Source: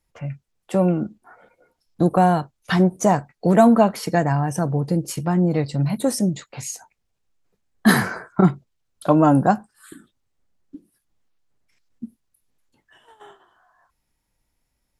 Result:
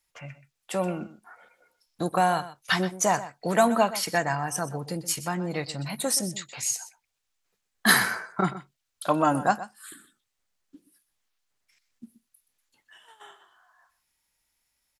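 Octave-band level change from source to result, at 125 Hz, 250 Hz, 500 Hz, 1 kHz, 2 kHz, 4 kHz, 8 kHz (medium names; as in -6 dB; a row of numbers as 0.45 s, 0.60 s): -13.0 dB, -12.0 dB, -7.0 dB, -4.0 dB, +1.0 dB, +3.5 dB, +4.0 dB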